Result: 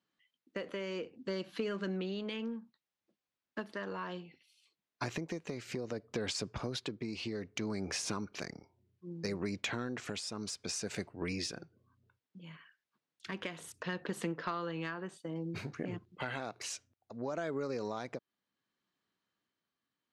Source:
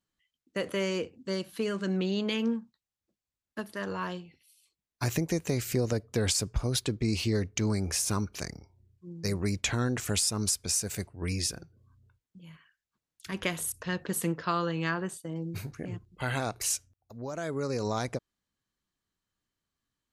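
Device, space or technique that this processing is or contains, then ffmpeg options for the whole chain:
AM radio: -af "highpass=190,lowpass=4200,acompressor=threshold=0.0158:ratio=5,asoftclip=type=tanh:threshold=0.0562,tremolo=f=0.63:d=0.36,volume=1.5"

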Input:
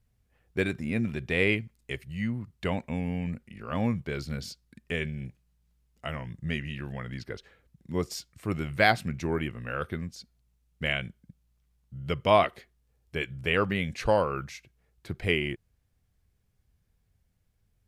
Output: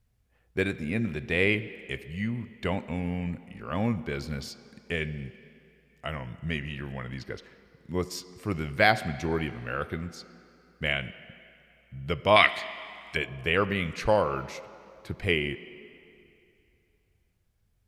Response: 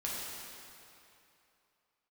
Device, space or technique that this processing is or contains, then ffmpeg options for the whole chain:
filtered reverb send: -filter_complex "[0:a]asplit=2[s0][s1];[s1]highpass=f=170:w=0.5412,highpass=f=170:w=1.3066,lowpass=5700[s2];[1:a]atrim=start_sample=2205[s3];[s2][s3]afir=irnorm=-1:irlink=0,volume=0.168[s4];[s0][s4]amix=inputs=2:normalize=0,asettb=1/sr,asplit=3[s5][s6][s7];[s5]atrim=end=12.364[s8];[s6]atrim=start=12.36:end=13.17,asetpts=PTS-STARTPTS,afade=t=in:d=0.004:c=qsin,afade=t=out:st=0.806:d=0.004:c=qsin,equalizer=f=125:t=o:w=1:g=-4,equalizer=f=500:t=o:w=1:g=-8,equalizer=f=2000:t=o:w=1:g=11,equalizer=f=4000:t=o:w=1:g=9,equalizer=f=8000:t=o:w=1:g=11[s9];[s7]atrim=start=13.166[s10];[s8][s9]acrossfade=d=0.004:c1=hsin:c2=qsin[s11];[s11][s10]acrossfade=d=0.004:c1=qsin:c2=hsin"

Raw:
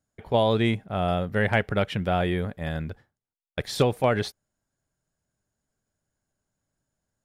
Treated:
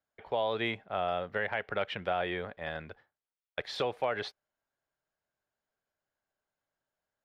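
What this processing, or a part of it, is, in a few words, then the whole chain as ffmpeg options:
DJ mixer with the lows and highs turned down: -filter_complex "[0:a]acrossover=split=430 4500:gain=0.158 1 0.0708[s0][s1][s2];[s0][s1][s2]amix=inputs=3:normalize=0,alimiter=limit=0.119:level=0:latency=1:release=161,volume=0.841"

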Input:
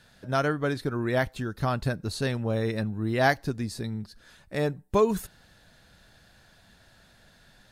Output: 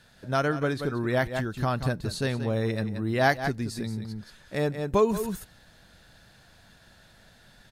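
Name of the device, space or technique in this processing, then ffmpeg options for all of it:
ducked delay: -filter_complex "[0:a]asplit=3[s0][s1][s2];[s1]adelay=178,volume=0.708[s3];[s2]apad=whole_len=348048[s4];[s3][s4]sidechaincompress=threshold=0.0158:ratio=12:attack=25:release=166[s5];[s0][s5]amix=inputs=2:normalize=0"

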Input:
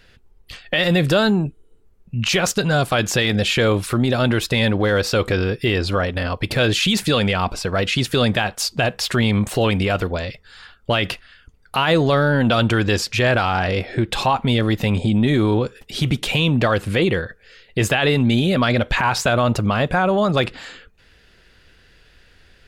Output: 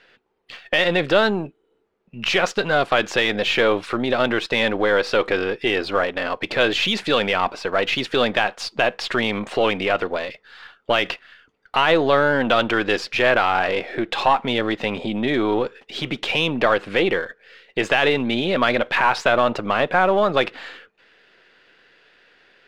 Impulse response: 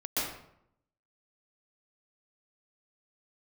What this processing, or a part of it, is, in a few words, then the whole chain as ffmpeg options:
crystal radio: -af "highpass=350,lowpass=3300,aeval=exprs='if(lt(val(0),0),0.708*val(0),val(0))':c=same,volume=1.41"

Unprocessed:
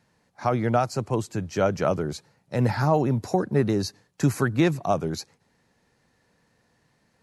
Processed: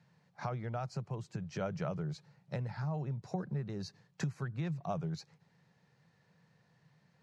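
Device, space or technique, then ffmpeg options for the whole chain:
jukebox: -af "lowpass=5400,lowshelf=f=200:t=q:w=3:g=8.5,acompressor=threshold=0.0398:ratio=4,highpass=180,volume=0.596"

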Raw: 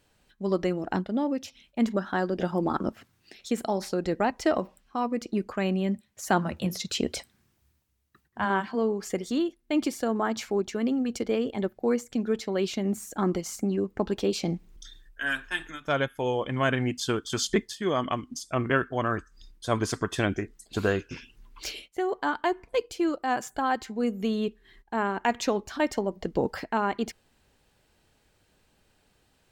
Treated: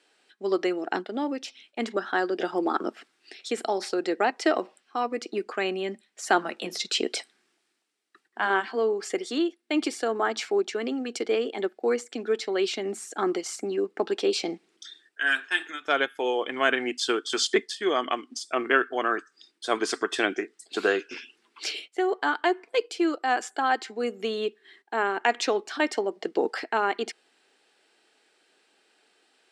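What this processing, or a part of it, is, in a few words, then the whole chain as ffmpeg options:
phone speaker on a table: -af "highpass=f=340:w=0.5412,highpass=f=340:w=1.3066,equalizer=f=560:t=q:w=4:g=-8,equalizer=f=990:t=q:w=4:g=-7,equalizer=f=6500:t=q:w=4:g=-6,lowpass=f=8900:w=0.5412,lowpass=f=8900:w=1.3066,volume=1.88"

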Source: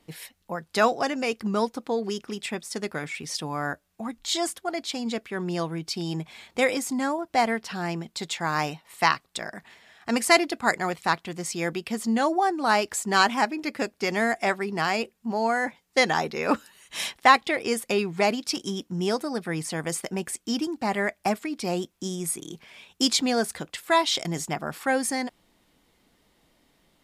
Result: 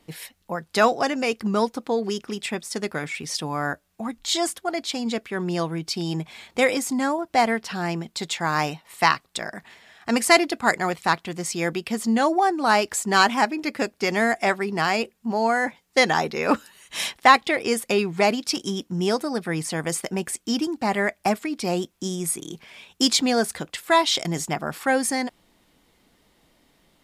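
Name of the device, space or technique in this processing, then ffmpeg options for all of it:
parallel distortion: -filter_complex "[0:a]asplit=2[s0][s1];[s1]asoftclip=type=hard:threshold=0.15,volume=0.2[s2];[s0][s2]amix=inputs=2:normalize=0,volume=1.19"

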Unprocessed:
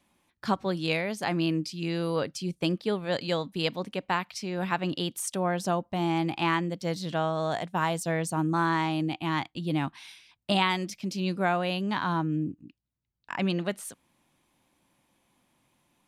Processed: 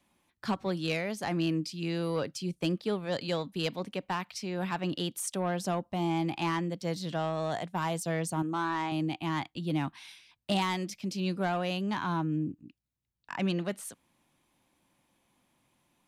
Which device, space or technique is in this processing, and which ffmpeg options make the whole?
one-band saturation: -filter_complex "[0:a]asettb=1/sr,asplit=3[s0][s1][s2];[s0]atrim=end=8.424[s3];[s1]atrim=start=8.42:end=8.92,asetpts=PTS-STARTPTS,afade=t=in:d=0.004:c=qsin,afade=t=out:st=0.496:d=0.004:c=qsin,bass=f=250:g=-10,treble=f=4000:g=-6[s4];[s2]atrim=start=8.916[s5];[s3][s4]acrossfade=d=0.004:c1=hsin:c2=qsin[s6];[s6][s5]acrossfade=d=0.004:c1=qsin:c2=hsin,acrossover=split=320|4900[s7][s8][s9];[s8]asoftclip=type=tanh:threshold=0.0708[s10];[s7][s10][s9]amix=inputs=3:normalize=0,volume=0.794"

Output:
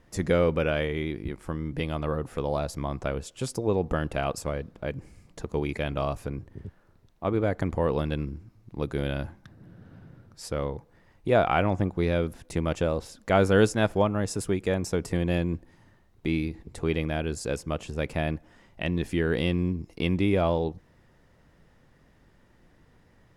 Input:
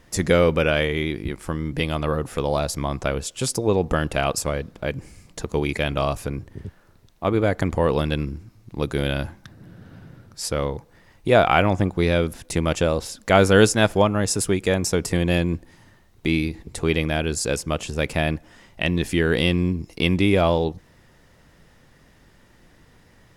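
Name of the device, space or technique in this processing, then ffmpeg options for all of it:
behind a face mask: -af "highshelf=f=2300:g=-8,volume=0.562"

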